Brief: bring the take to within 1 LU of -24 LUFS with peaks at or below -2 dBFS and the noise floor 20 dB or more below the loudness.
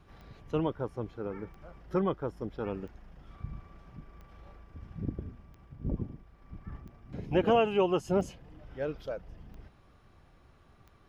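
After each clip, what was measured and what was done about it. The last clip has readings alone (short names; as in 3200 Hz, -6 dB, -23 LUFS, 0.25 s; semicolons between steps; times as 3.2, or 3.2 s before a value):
clicks 9; loudness -33.0 LUFS; peak -15.0 dBFS; loudness target -24.0 LUFS
-> de-click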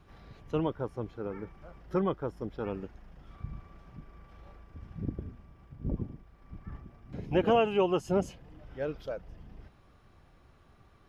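clicks 0; loudness -33.0 LUFS; peak -15.0 dBFS; loudness target -24.0 LUFS
-> gain +9 dB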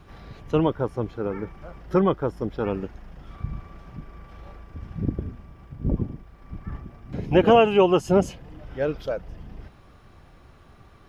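loudness -24.0 LUFS; peak -6.0 dBFS; noise floor -51 dBFS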